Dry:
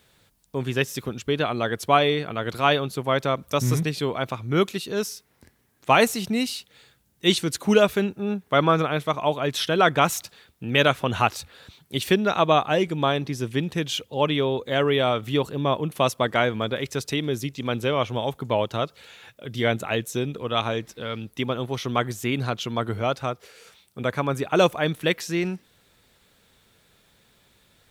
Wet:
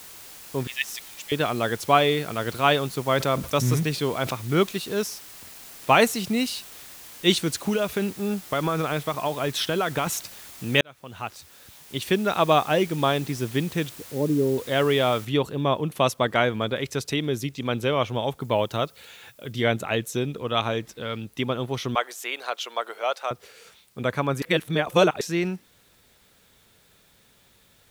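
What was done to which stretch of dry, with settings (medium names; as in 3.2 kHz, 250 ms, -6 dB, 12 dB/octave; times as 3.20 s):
0.67–1.32 s: brick-wall FIR high-pass 1.7 kHz
3.13–4.31 s: decay stretcher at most 120 dB/s
7.56–10.07 s: compression, threshold -20 dBFS
10.81–12.58 s: fade in
13.89–14.58 s: resonant low-pass 350 Hz, resonance Q 1.5
15.25 s: noise floor step -44 dB -64 dB
18.41–19.52 s: treble shelf 8.9 kHz +8.5 dB
21.95–23.31 s: high-pass 510 Hz 24 dB/octave
24.42–25.21 s: reverse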